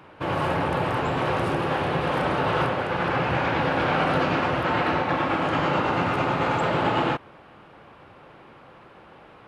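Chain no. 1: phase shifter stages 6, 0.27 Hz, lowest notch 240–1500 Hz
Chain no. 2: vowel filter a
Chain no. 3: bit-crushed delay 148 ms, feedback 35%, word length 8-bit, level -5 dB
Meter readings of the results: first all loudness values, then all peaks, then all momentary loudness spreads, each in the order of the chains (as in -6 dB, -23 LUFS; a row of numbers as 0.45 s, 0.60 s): -27.0 LUFS, -34.0 LUFS, -23.0 LUFS; -14.0 dBFS, -20.0 dBFS, -9.5 dBFS; 2 LU, 3 LU, 3 LU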